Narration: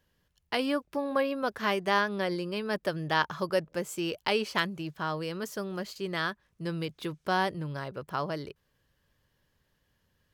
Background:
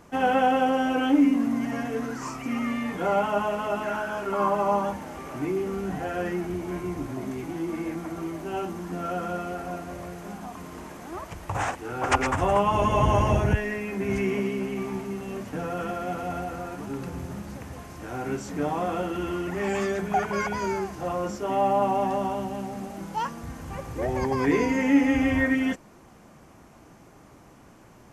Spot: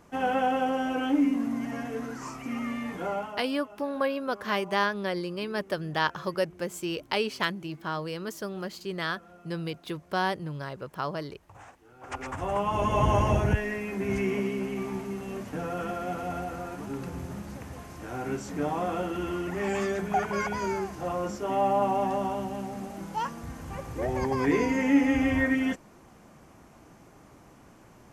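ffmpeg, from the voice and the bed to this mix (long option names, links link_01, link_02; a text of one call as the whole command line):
ffmpeg -i stem1.wav -i stem2.wav -filter_complex "[0:a]adelay=2850,volume=0dB[link_01];[1:a]volume=15.5dB,afade=type=out:start_time=2.96:duration=0.49:silence=0.133352,afade=type=in:start_time=11.99:duration=1.06:silence=0.1[link_02];[link_01][link_02]amix=inputs=2:normalize=0" out.wav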